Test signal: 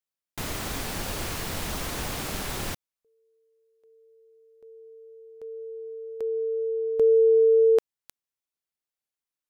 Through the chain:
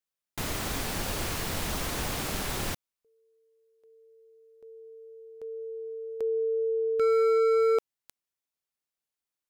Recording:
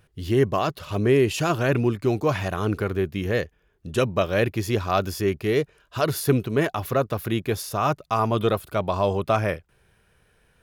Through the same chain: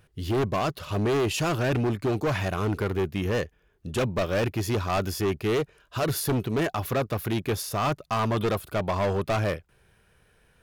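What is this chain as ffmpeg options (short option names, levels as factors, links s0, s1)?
-af "asoftclip=type=hard:threshold=0.0841"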